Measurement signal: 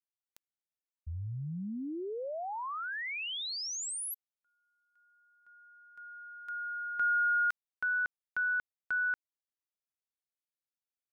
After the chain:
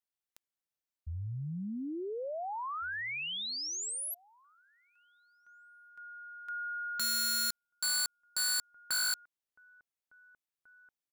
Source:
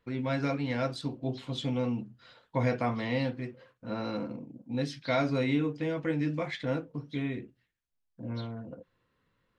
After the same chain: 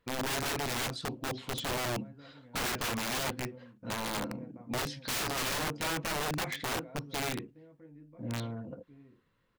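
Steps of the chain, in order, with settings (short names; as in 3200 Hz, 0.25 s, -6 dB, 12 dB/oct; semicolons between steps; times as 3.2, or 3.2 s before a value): outdoor echo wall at 300 m, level -23 dB; wrapped overs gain 28 dB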